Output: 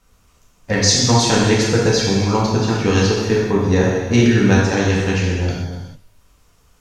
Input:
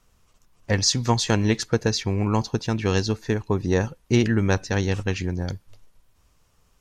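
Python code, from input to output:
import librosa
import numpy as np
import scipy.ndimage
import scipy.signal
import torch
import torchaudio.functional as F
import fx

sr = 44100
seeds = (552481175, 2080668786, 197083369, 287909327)

y = fx.rev_gated(x, sr, seeds[0], gate_ms=470, shape='falling', drr_db=-5.5)
y = F.gain(torch.from_numpy(y), 1.5).numpy()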